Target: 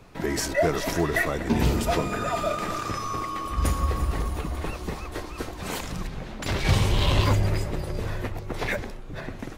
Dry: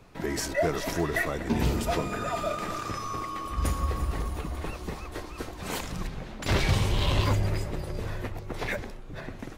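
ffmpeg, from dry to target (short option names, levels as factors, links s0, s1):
-filter_complex "[0:a]asplit=3[s0][s1][s2];[s0]afade=t=out:st=5.53:d=0.02[s3];[s1]acompressor=threshold=0.0251:ratio=2,afade=t=in:st=5.53:d=0.02,afade=t=out:st=6.64:d=0.02[s4];[s2]afade=t=in:st=6.64:d=0.02[s5];[s3][s4][s5]amix=inputs=3:normalize=0,volume=1.5"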